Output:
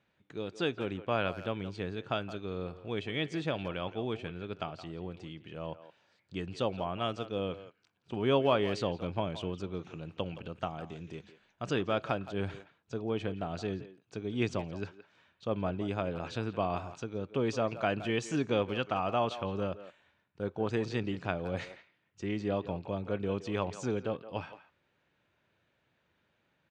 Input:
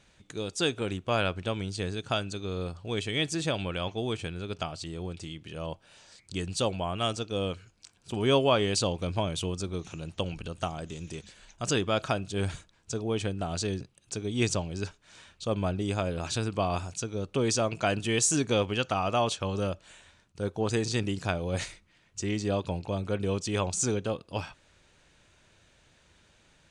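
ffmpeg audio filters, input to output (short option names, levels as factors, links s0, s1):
-filter_complex "[0:a]highpass=110,lowpass=2700,agate=range=0.447:threshold=0.00282:ratio=16:detection=peak,asplit=2[s0][s1];[s1]adelay=170,highpass=300,lowpass=3400,asoftclip=type=hard:threshold=0.1,volume=0.224[s2];[s0][s2]amix=inputs=2:normalize=0,volume=0.708"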